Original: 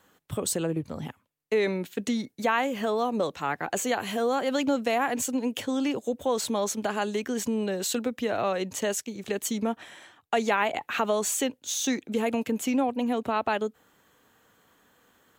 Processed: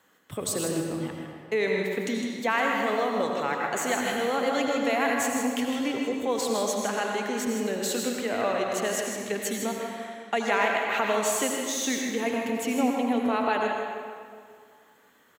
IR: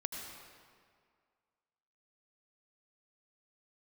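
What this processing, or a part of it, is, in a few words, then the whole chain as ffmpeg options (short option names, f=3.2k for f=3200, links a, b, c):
PA in a hall: -filter_complex "[0:a]highpass=f=170:p=1,equalizer=f=2k:t=o:w=0.44:g=4.5,aecho=1:1:157:0.398[a];[1:a]atrim=start_sample=2205[b];[a][b]afir=irnorm=-1:irlink=0"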